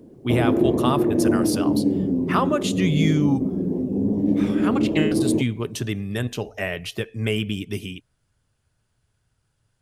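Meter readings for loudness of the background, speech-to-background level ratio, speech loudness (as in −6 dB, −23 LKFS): −22.5 LKFS, −3.5 dB, −26.0 LKFS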